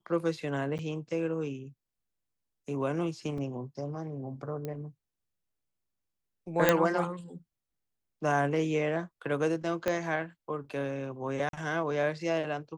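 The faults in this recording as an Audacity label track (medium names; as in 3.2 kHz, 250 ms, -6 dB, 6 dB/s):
0.780000	0.790000	dropout 9.1 ms
3.380000	3.380000	dropout 2.9 ms
4.650000	4.650000	pop -23 dBFS
6.690000	6.690000	pop -7 dBFS
9.880000	9.880000	pop -15 dBFS
11.490000	11.530000	dropout 42 ms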